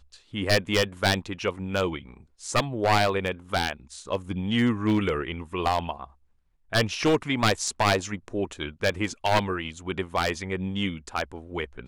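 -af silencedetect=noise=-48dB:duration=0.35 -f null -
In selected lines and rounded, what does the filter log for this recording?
silence_start: 6.11
silence_end: 6.72 | silence_duration: 0.62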